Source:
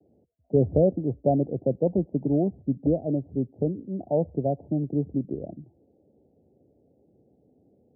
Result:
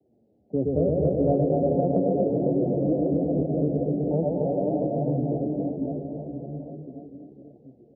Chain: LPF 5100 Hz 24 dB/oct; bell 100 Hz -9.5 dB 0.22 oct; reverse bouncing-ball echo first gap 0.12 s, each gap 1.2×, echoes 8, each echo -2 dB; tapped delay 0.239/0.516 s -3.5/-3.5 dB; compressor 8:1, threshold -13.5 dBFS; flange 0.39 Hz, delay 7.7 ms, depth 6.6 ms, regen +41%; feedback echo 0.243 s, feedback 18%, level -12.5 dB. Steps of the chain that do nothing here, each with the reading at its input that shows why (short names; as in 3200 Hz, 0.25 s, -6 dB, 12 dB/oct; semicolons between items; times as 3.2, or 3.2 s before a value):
LPF 5100 Hz: input band ends at 810 Hz